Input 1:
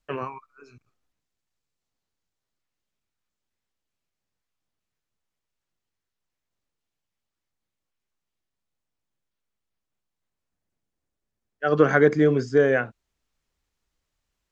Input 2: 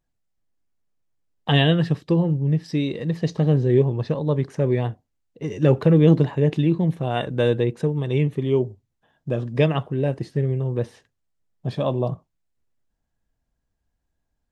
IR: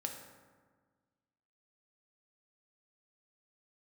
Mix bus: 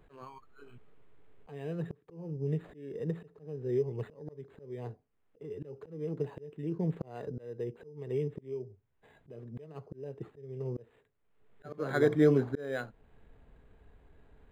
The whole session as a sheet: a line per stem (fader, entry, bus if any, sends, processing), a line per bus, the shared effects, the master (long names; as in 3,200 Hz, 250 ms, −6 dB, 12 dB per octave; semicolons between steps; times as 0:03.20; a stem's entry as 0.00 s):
−3.0 dB, 0.00 s, no send, no processing
−12.5 dB, 0.00 s, no send, parametric band 430 Hz +13.5 dB 0.28 octaves; multiband upward and downward compressor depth 100%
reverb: not used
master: volume swells 597 ms; linearly interpolated sample-rate reduction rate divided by 8×